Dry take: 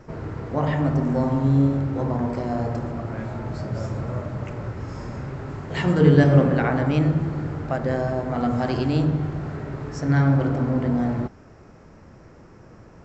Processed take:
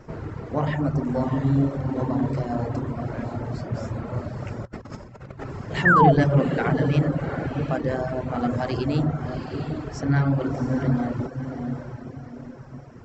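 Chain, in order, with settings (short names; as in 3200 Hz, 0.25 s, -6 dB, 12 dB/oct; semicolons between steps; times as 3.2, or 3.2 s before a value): diffused feedback echo 0.726 s, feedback 40%, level -7 dB; soft clip -8.5 dBFS, distortion -19 dB; reverb removal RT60 0.78 s; 4.65–5.44 negative-ratio compressor -38 dBFS, ratio -0.5; 5.85–6.12 painted sound fall 610–1900 Hz -16 dBFS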